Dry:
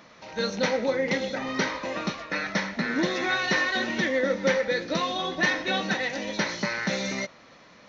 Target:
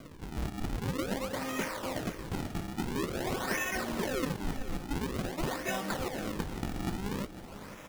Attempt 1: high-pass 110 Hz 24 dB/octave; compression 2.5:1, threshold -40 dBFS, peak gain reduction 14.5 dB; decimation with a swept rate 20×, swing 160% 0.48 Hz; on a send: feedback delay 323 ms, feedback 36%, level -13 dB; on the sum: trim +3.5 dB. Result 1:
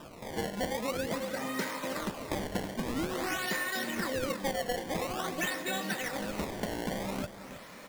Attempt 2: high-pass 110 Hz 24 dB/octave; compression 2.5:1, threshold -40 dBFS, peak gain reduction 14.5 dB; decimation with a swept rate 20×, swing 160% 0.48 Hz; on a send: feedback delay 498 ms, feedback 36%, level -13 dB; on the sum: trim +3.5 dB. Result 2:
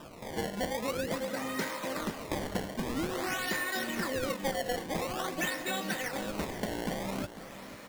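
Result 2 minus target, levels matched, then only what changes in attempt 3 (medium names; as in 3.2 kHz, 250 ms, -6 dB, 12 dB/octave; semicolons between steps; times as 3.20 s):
decimation with a swept rate: distortion -10 dB
change: decimation with a swept rate 48×, swing 160% 0.48 Hz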